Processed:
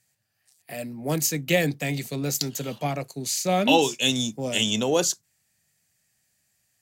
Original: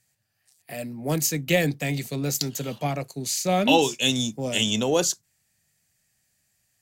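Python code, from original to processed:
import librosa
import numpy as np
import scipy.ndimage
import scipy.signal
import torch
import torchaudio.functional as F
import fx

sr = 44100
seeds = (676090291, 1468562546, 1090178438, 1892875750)

y = fx.low_shelf(x, sr, hz=76.0, db=-6.5)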